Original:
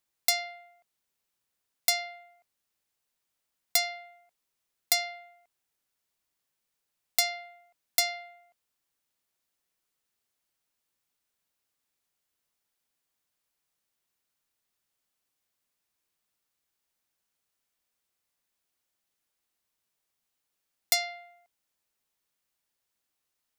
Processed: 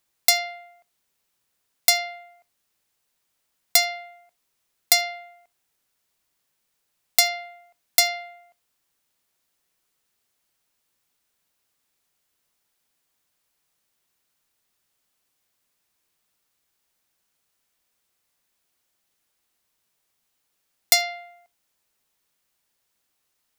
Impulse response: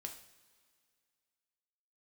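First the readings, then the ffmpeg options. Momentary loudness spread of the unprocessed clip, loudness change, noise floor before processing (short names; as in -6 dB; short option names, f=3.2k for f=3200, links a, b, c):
15 LU, +7.5 dB, -83 dBFS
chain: -filter_complex "[0:a]asplit=2[a][b];[1:a]atrim=start_sample=2205,afade=t=out:st=0.13:d=0.01,atrim=end_sample=6174[c];[b][c]afir=irnorm=-1:irlink=0,volume=-12.5dB[d];[a][d]amix=inputs=2:normalize=0,volume=6.5dB"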